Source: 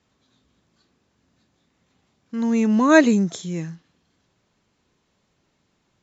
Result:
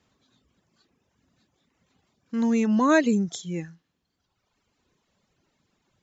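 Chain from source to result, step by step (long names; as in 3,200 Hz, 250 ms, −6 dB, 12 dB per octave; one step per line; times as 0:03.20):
reverb reduction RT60 1.3 s
downward compressor 2.5 to 1, threshold −18 dBFS, peak gain reduction 7 dB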